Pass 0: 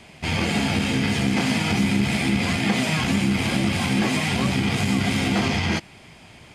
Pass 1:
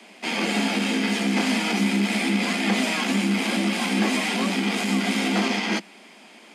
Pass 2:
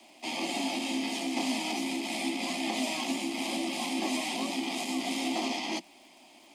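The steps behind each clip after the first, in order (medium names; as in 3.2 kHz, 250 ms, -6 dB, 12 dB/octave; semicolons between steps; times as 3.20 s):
steep high-pass 190 Hz 96 dB/octave
static phaser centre 300 Hz, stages 8; crackle 300 per s -48 dBFS; trim -4.5 dB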